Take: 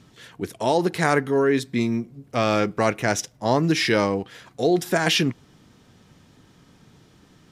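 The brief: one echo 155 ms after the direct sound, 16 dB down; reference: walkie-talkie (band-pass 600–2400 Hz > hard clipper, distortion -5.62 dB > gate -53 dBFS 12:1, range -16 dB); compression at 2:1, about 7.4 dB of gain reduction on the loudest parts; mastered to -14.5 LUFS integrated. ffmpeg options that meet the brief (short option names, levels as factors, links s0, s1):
-af "acompressor=threshold=0.0355:ratio=2,highpass=600,lowpass=2400,aecho=1:1:155:0.158,asoftclip=type=hard:threshold=0.0188,agate=range=0.158:threshold=0.00224:ratio=12,volume=16.8"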